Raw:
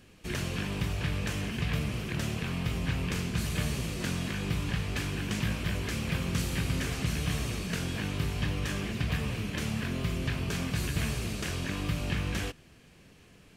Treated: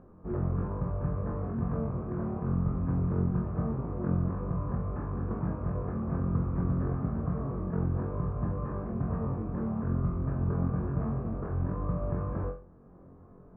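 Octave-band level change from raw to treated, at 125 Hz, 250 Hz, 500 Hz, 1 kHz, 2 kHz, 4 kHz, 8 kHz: +1.5 dB, +1.5 dB, +2.5 dB, +1.0 dB, -17.5 dB, under -40 dB, under -40 dB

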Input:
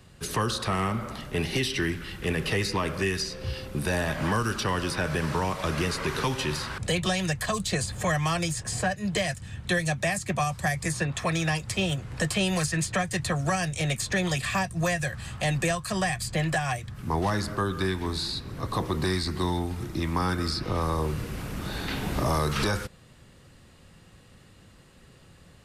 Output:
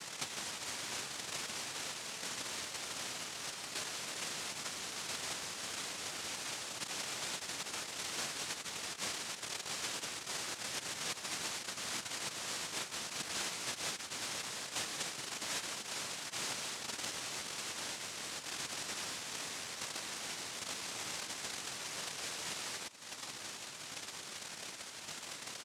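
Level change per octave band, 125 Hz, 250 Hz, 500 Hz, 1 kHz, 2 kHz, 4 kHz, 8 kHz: -29.0, -23.0, -19.5, -15.0, -12.0, -5.5, -3.5 dB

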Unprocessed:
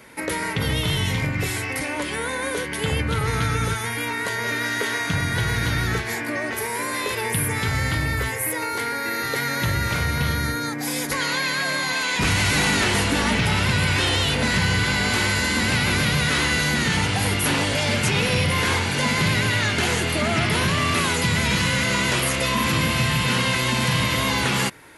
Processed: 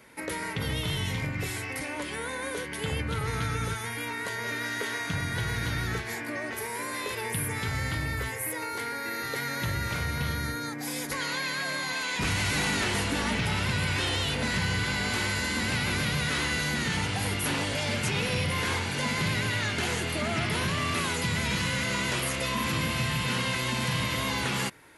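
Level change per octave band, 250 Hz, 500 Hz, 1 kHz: -7.5, -7.5, -7.5 dB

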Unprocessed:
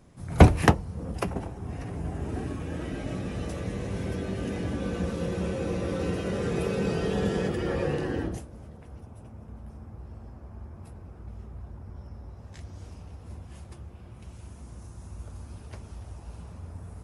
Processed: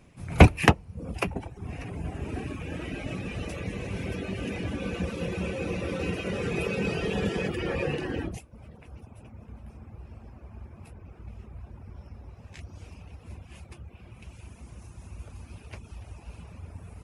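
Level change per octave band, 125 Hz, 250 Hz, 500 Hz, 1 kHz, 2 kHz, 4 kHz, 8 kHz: -1.0, -1.0, -1.5, 0.0, +4.0, +3.5, -0.5 dB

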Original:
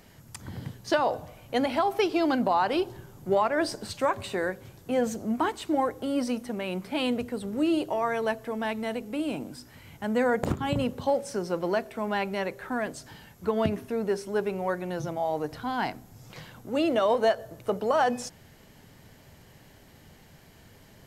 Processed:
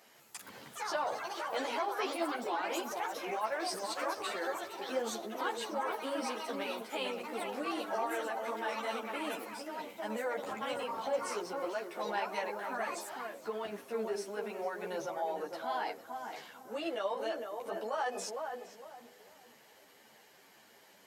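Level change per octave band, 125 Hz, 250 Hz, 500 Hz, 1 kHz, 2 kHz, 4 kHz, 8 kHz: under -20 dB, -14.5 dB, -9.0 dB, -6.5 dB, -5.5 dB, -4.5 dB, -2.0 dB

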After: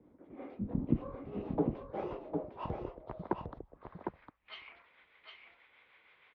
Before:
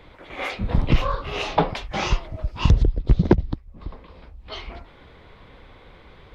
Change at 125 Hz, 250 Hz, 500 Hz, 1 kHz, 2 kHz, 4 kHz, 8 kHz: -19.0 dB, -10.5 dB, -11.5 dB, -15.5 dB, -21.5 dB, -23.0 dB, n/a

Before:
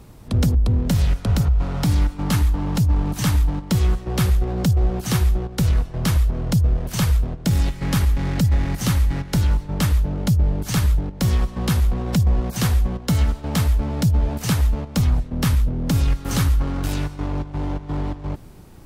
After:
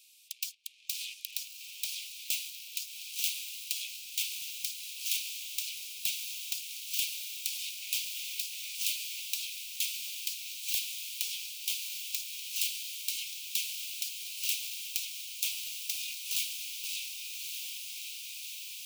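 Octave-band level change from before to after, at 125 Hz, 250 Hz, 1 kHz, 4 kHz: under -40 dB, under -40 dB, under -40 dB, -1.0 dB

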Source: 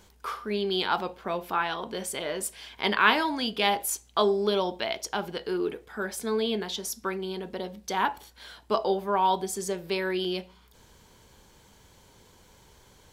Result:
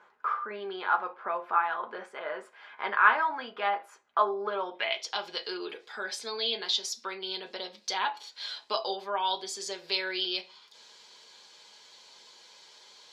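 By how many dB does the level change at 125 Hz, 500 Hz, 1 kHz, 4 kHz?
under -20 dB, -7.5 dB, -1.0 dB, 0.0 dB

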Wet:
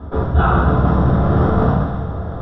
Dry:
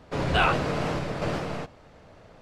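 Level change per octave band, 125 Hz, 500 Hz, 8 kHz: +16.5 dB, +9.0 dB, under -15 dB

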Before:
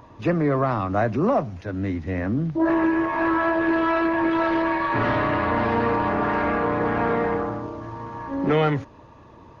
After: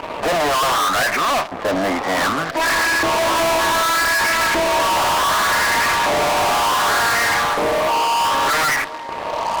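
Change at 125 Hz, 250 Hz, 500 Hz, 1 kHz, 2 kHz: -7.5, -5.5, +3.0, +8.5, +10.5 dB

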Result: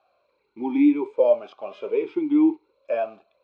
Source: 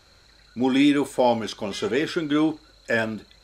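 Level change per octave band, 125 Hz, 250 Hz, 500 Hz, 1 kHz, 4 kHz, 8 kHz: under -15 dB, +1.0 dB, +2.0 dB, -7.0 dB, under -15 dB, under -30 dB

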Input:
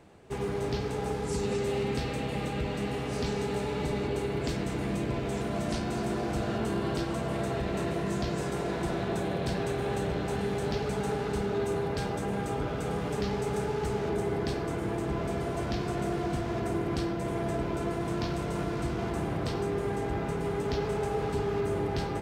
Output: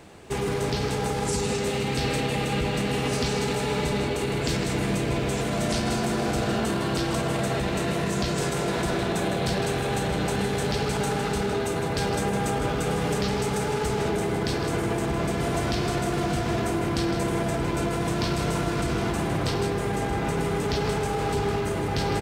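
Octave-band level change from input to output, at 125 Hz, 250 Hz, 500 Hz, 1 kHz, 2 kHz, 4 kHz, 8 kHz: +5.5, +5.0, +4.0, +6.5, +8.0, +10.0, +11.5 dB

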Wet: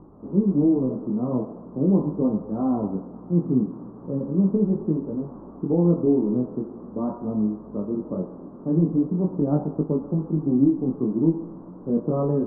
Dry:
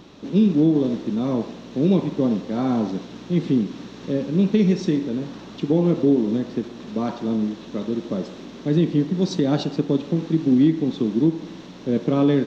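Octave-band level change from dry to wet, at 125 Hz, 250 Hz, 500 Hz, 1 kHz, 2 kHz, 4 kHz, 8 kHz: -1.0 dB, -2.5 dB, -2.5 dB, -3.5 dB, under -20 dB, under -40 dB, n/a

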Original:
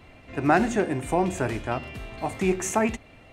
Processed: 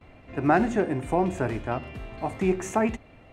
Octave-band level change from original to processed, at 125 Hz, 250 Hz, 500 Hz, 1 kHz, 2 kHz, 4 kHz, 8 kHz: 0.0, 0.0, -0.5, -1.0, -3.0, -6.0, -8.5 dB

